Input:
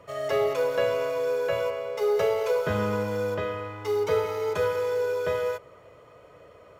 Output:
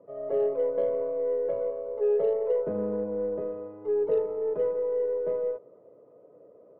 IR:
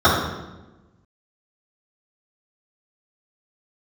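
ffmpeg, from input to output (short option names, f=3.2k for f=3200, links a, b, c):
-af "asuperpass=centerf=340:order=4:qfactor=0.9,aeval=exprs='0.158*(cos(1*acos(clip(val(0)/0.158,-1,1)))-cos(1*PI/2))+0.00158*(cos(8*acos(clip(val(0)/0.158,-1,1)))-cos(8*PI/2))':c=same"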